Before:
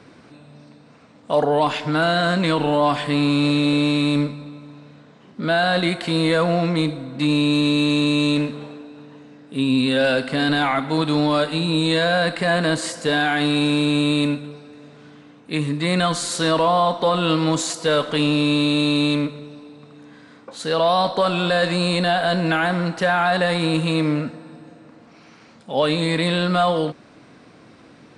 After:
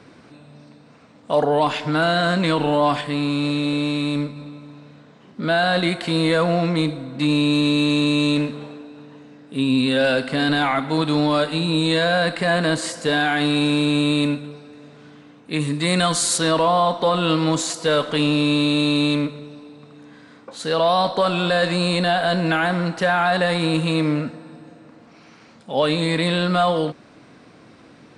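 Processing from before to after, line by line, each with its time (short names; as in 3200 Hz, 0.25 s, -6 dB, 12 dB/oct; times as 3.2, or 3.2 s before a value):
3.01–4.36 gain -3.5 dB
15.6–16.38 high shelf 5900 Hz +10.5 dB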